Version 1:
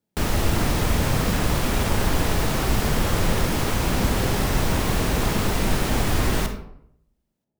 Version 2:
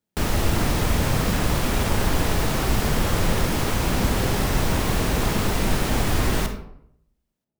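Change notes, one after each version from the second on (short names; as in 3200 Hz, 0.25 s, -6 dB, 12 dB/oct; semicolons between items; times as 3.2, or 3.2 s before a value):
speech -4.5 dB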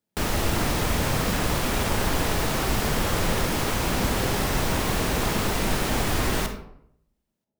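speech: send +11.5 dB; master: add low shelf 240 Hz -5 dB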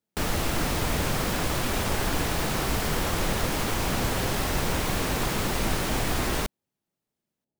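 reverb: off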